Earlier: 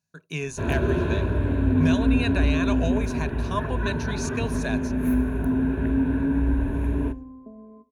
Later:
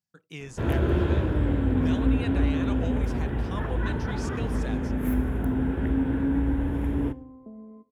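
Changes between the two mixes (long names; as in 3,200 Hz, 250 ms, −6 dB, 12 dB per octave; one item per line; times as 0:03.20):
speech −7.5 dB
master: remove EQ curve with evenly spaced ripples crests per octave 1.5, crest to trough 10 dB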